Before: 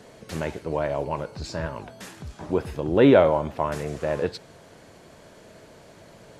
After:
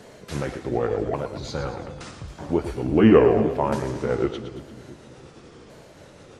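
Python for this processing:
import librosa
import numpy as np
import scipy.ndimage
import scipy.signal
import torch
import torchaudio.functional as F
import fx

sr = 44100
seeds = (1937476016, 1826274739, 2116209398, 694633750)

y = fx.pitch_ramps(x, sr, semitones=-6.0, every_ms=1140)
y = fx.echo_split(y, sr, split_hz=310.0, low_ms=332, high_ms=114, feedback_pct=52, wet_db=-9.5)
y = y * librosa.db_to_amplitude(2.5)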